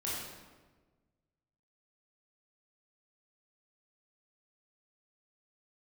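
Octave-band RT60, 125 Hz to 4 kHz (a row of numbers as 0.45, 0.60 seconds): 1.9, 1.6, 1.5, 1.2, 1.1, 0.90 seconds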